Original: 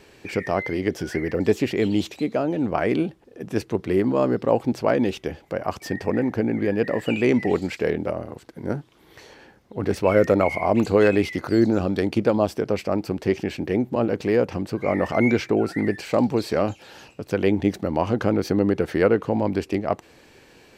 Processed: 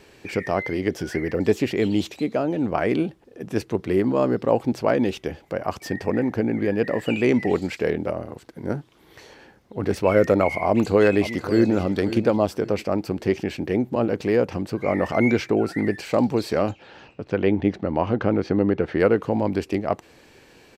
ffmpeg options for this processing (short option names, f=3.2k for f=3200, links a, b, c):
-filter_complex "[0:a]asplit=2[a][b];[b]afade=t=in:st=10.67:d=0.01,afade=t=out:st=11.74:d=0.01,aecho=0:1:540|1080|1620:0.223872|0.0671616|0.0201485[c];[a][c]amix=inputs=2:normalize=0,asettb=1/sr,asplit=3[d][e][f];[d]atrim=end=16.714[g];[e]atrim=start=16.71:end=19,asetpts=PTS-STARTPTS,afade=t=in:d=0.004:c=qsin,afade=t=out:st=2.286:d=0.004:c=qsin,lowpass=3.2k[h];[f]atrim=start=18.996[i];[g][h]acrossfade=d=0.004:c1=hsin:c2=qsin[j];[j][i]acrossfade=d=0.004:c1=qsin:c2=hsin"